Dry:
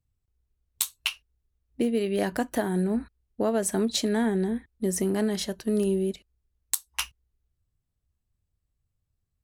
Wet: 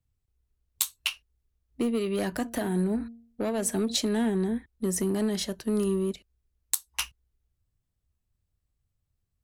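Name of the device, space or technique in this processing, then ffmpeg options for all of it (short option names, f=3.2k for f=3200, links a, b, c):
one-band saturation: -filter_complex "[0:a]asplit=3[a][b][c];[a]afade=t=out:st=2.43:d=0.02[d];[b]bandreject=f=231.8:t=h:w=4,bandreject=f=463.6:t=h:w=4,bandreject=f=695.4:t=h:w=4,afade=t=in:st=2.43:d=0.02,afade=t=out:st=3.94:d=0.02[e];[c]afade=t=in:st=3.94:d=0.02[f];[d][e][f]amix=inputs=3:normalize=0,acrossover=split=260|2500[g][h][i];[h]asoftclip=type=tanh:threshold=-27dB[j];[g][j][i]amix=inputs=3:normalize=0"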